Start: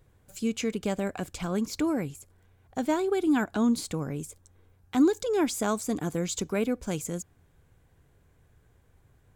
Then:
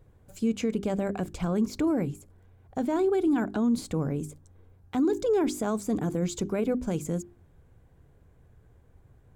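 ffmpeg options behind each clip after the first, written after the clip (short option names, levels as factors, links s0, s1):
-af "tiltshelf=f=1200:g=5.5,bandreject=f=50:t=h:w=6,bandreject=f=100:t=h:w=6,bandreject=f=150:t=h:w=6,bandreject=f=200:t=h:w=6,bandreject=f=250:t=h:w=6,bandreject=f=300:t=h:w=6,bandreject=f=350:t=h:w=6,bandreject=f=400:t=h:w=6,alimiter=limit=0.119:level=0:latency=1:release=13"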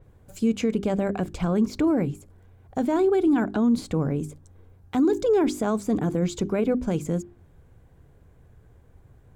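-af "adynamicequalizer=threshold=0.00158:dfrequency=5300:dqfactor=0.7:tfrequency=5300:tqfactor=0.7:attack=5:release=100:ratio=0.375:range=3.5:mode=cutabove:tftype=highshelf,volume=1.58"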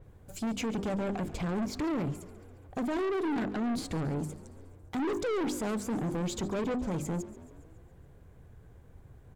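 -filter_complex "[0:a]aeval=exprs='(tanh(28.2*val(0)+0.15)-tanh(0.15))/28.2':c=same,asplit=7[s0][s1][s2][s3][s4][s5][s6];[s1]adelay=139,afreqshift=36,volume=0.126[s7];[s2]adelay=278,afreqshift=72,volume=0.0767[s8];[s3]adelay=417,afreqshift=108,volume=0.0468[s9];[s4]adelay=556,afreqshift=144,volume=0.0285[s10];[s5]adelay=695,afreqshift=180,volume=0.0174[s11];[s6]adelay=834,afreqshift=216,volume=0.0106[s12];[s0][s7][s8][s9][s10][s11][s12]amix=inputs=7:normalize=0"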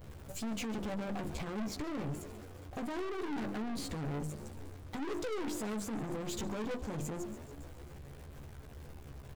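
-filter_complex "[0:a]aeval=exprs='val(0)+0.5*0.00531*sgn(val(0))':c=same,asplit=2[s0][s1];[s1]adelay=14,volume=0.75[s2];[s0][s2]amix=inputs=2:normalize=0,aeval=exprs='(tanh(44.7*val(0)+0.5)-tanh(0.5))/44.7':c=same,volume=0.794"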